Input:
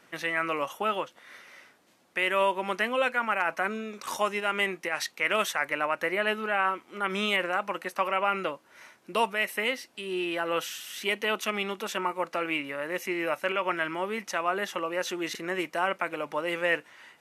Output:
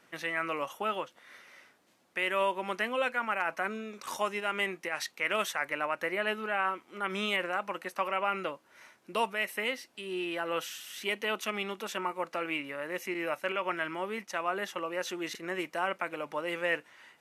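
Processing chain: 13.14–15.43 expander -34 dBFS; gain -4 dB

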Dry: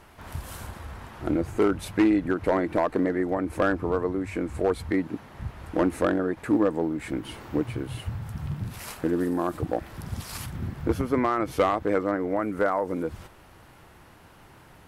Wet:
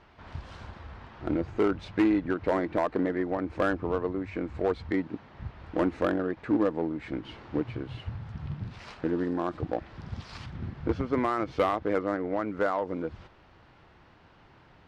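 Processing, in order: LPF 4900 Hz 24 dB/oct; added harmonics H 7 -31 dB, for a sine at -13.5 dBFS; gain -3 dB

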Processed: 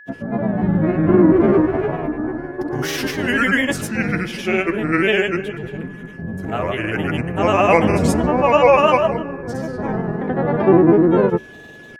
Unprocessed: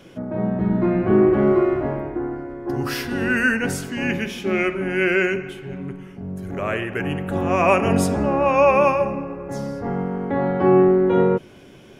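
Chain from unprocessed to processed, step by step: grains, pitch spread up and down by 3 st; whine 1700 Hz -44 dBFS; gain +4 dB

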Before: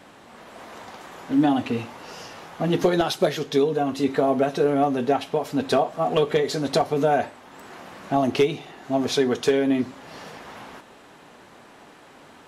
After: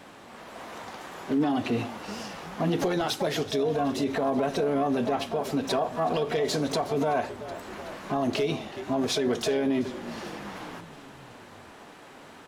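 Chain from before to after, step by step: frequency-shifting echo 0.375 s, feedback 60%, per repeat -34 Hz, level -19.5 dB; harmoniser +7 st -12 dB; limiter -18 dBFS, peak gain reduction 10.5 dB

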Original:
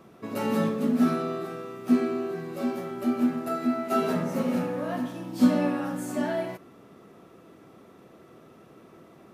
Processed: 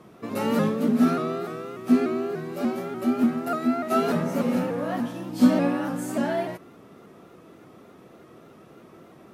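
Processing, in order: shaped vibrato saw up 3.4 Hz, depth 100 cents; gain +2.5 dB

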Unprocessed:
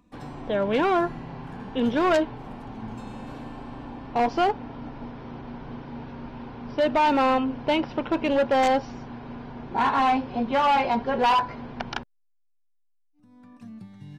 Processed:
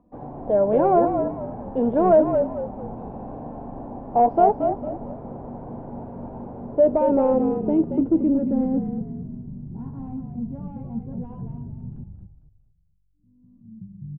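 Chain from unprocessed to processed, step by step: 11.24–13.71 transient shaper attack -11 dB, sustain +4 dB; low-pass sweep 680 Hz -> 160 Hz, 6.37–9.76; frequency-shifting echo 0.226 s, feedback 35%, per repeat -47 Hz, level -6 dB

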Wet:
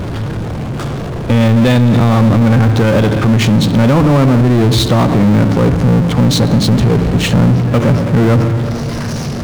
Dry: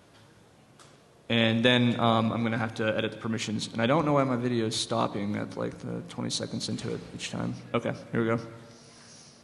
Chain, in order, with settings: RIAA curve playback; power-law curve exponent 0.5; limiter -13 dBFS, peak gain reduction 7 dB; gain +8.5 dB

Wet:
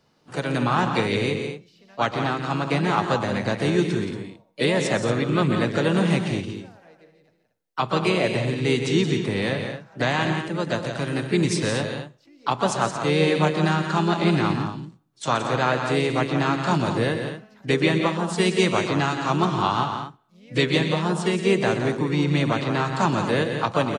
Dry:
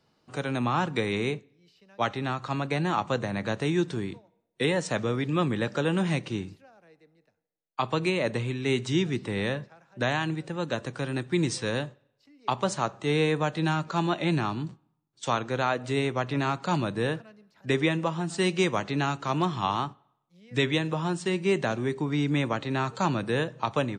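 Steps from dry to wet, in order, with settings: loudspeakers at several distances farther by 43 m -11 dB, 59 m -8 dB, 79 m -11 dB; harmoniser +3 st -8 dB; gain +3.5 dB

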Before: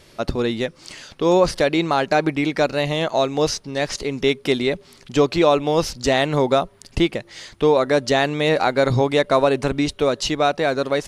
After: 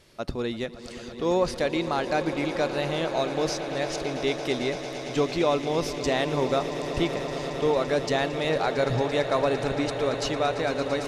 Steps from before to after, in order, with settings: swelling echo 0.113 s, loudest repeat 8, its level -15.5 dB; gain -8 dB

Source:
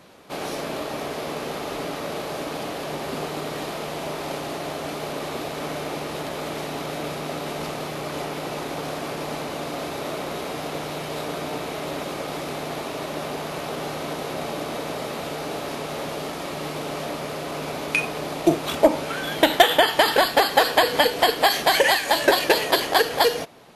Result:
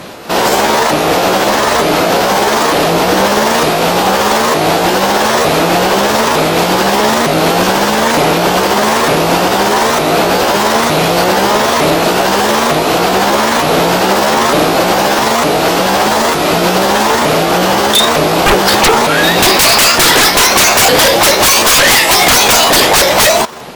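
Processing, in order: repeated pitch sweeps +8 st, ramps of 0.908 s; sine folder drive 18 dB, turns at -4 dBFS

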